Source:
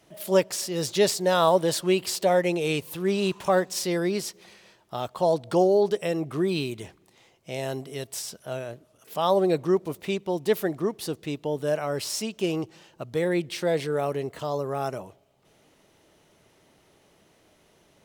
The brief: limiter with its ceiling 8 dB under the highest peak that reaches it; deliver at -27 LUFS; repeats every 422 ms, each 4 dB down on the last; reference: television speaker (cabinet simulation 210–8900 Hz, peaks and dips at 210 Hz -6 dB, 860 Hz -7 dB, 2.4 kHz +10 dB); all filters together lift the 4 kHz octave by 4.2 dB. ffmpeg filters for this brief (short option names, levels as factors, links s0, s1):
-af "equalizer=f=4000:t=o:g=4,alimiter=limit=0.168:level=0:latency=1,highpass=f=210:w=0.5412,highpass=f=210:w=1.3066,equalizer=f=210:t=q:w=4:g=-6,equalizer=f=860:t=q:w=4:g=-7,equalizer=f=2400:t=q:w=4:g=10,lowpass=f=8900:w=0.5412,lowpass=f=8900:w=1.3066,aecho=1:1:422|844|1266|1688|2110|2532|2954|3376|3798:0.631|0.398|0.25|0.158|0.0994|0.0626|0.0394|0.0249|0.0157,volume=0.891"